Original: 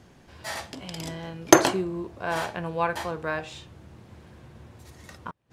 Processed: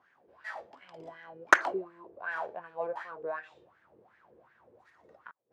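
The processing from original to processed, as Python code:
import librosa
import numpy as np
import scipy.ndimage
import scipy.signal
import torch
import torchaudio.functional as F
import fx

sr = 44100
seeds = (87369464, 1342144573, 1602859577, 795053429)

y = fx.cheby_harmonics(x, sr, harmonics=(3,), levels_db=(-6,), full_scale_db=-2.0)
y = fx.wah_lfo(y, sr, hz=2.7, low_hz=430.0, high_hz=1800.0, q=5.6)
y = F.gain(torch.from_numpy(y), 8.0).numpy()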